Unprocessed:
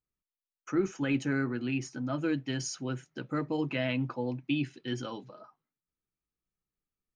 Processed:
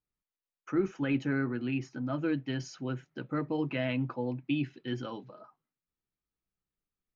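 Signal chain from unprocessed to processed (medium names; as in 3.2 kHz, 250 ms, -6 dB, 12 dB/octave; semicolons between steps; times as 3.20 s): distance through air 170 m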